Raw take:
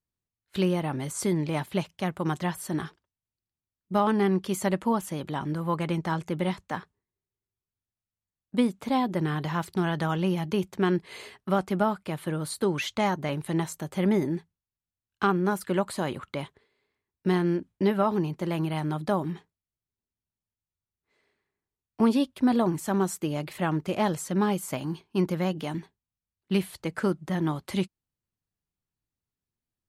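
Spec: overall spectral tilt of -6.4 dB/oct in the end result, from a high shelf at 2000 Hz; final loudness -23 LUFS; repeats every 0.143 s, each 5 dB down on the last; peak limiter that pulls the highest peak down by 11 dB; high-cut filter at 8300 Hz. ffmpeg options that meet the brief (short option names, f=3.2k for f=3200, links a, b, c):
-af "lowpass=8.3k,highshelf=f=2k:g=-8.5,alimiter=limit=-23.5dB:level=0:latency=1,aecho=1:1:143|286|429|572|715|858|1001:0.562|0.315|0.176|0.0988|0.0553|0.031|0.0173,volume=9.5dB"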